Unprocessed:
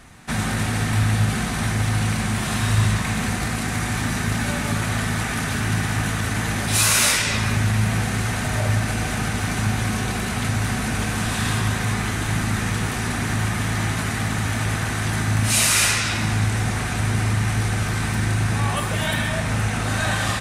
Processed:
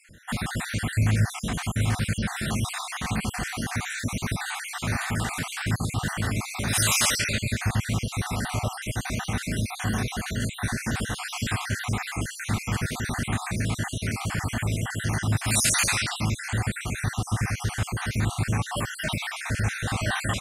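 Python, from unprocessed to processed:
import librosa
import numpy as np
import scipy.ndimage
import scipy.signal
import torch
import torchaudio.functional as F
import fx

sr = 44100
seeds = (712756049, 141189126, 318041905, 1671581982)

y = fx.spec_dropout(x, sr, seeds[0], share_pct=52)
y = y * 10.0 ** (-2.0 / 20.0)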